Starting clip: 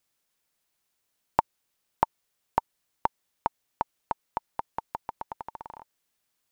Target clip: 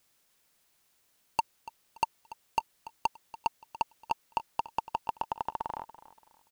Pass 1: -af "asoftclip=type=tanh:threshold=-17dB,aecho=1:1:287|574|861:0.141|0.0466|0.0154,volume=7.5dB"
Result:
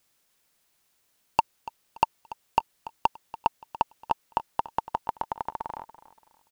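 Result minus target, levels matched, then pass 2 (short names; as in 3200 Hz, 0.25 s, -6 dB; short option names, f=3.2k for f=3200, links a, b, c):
soft clip: distortion -5 dB
-af "asoftclip=type=tanh:threshold=-26dB,aecho=1:1:287|574|861:0.141|0.0466|0.0154,volume=7.5dB"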